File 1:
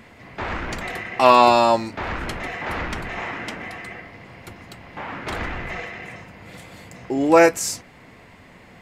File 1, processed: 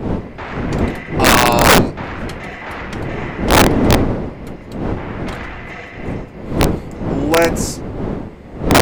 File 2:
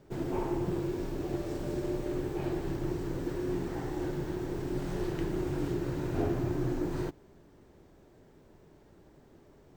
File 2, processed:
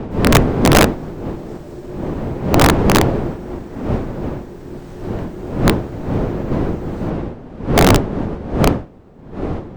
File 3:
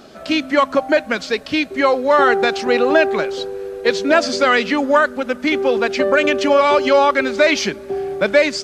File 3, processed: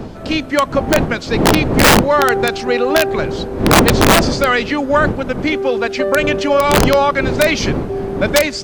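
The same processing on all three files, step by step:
wind noise 340 Hz -17 dBFS; integer overflow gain 2.5 dB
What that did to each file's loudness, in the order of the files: +4.0 LU, +16.5 LU, +2.0 LU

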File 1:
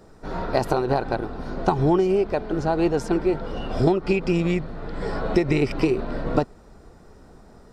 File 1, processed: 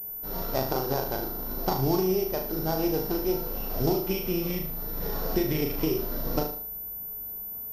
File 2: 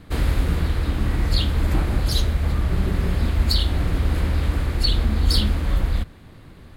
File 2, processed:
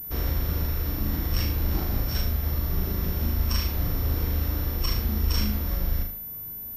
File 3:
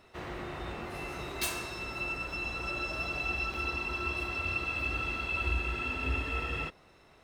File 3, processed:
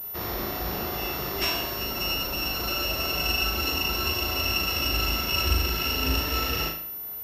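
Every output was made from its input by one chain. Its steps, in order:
sorted samples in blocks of 8 samples; flutter echo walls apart 6.5 m, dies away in 0.5 s; class-D stage that switches slowly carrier 14 kHz; peak normalisation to -12 dBFS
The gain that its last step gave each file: -8.0 dB, -7.5 dB, +6.5 dB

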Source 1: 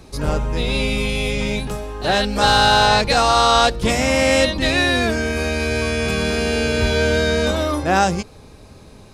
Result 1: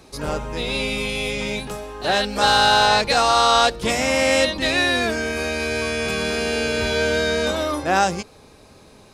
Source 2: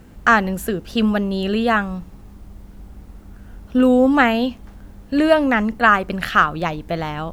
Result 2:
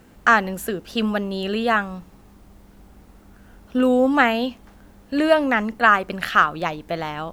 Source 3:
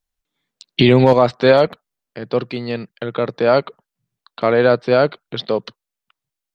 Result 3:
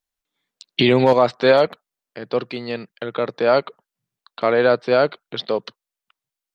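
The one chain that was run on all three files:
bass shelf 180 Hz -10.5 dB; trim -1 dB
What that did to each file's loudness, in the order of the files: -2.0 LU, -2.5 LU, -2.5 LU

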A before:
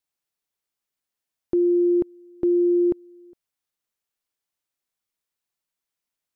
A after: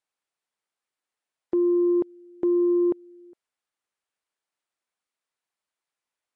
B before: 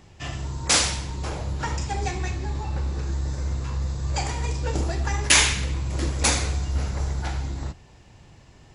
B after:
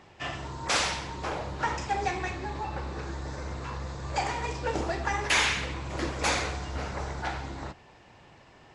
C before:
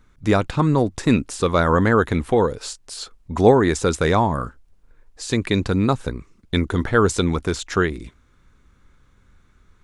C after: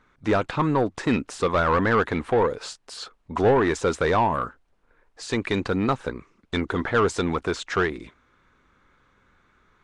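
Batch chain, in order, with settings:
overdrive pedal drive 20 dB, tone 1.7 kHz, clips at -1 dBFS; trim -8.5 dB; Nellymoser 44 kbps 22.05 kHz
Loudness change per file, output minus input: -2.0 LU, -6.0 LU, -4.0 LU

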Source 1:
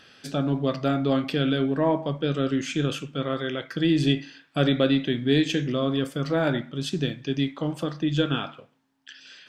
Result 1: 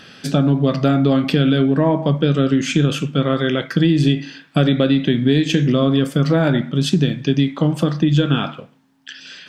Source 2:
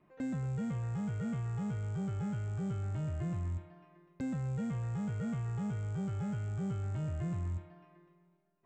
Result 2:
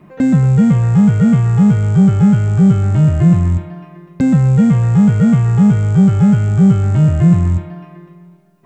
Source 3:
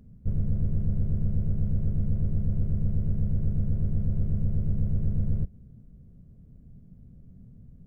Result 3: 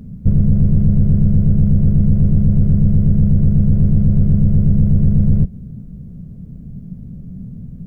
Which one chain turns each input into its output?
peaking EQ 180 Hz +8 dB 0.95 oct; compression, threshold -21 dBFS; peak normalisation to -2 dBFS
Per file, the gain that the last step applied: +10.0 dB, +20.5 dB, +14.0 dB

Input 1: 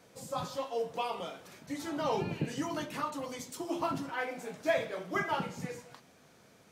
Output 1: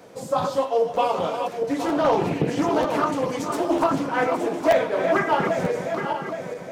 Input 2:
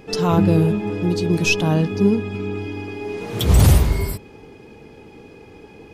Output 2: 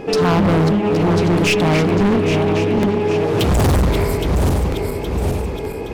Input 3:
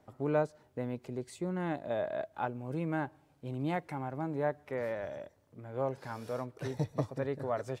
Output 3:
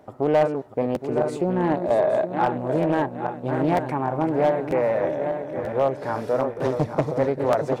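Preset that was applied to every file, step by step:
backward echo that repeats 409 ms, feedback 65%, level -7.5 dB; peaking EQ 530 Hz +9.5 dB 3 oct; in parallel at 0 dB: compression, threshold -24 dBFS; on the sum: dynamic bell 400 Hz, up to -3 dB, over -22 dBFS, Q 3; hard clipper -12 dBFS; wow and flutter 17 cents; crackling interface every 0.94 s, samples 512, repeat, from 0.94 s; loudspeaker Doppler distortion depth 0.36 ms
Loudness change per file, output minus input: +12.5 LU, +2.0 LU, +13.0 LU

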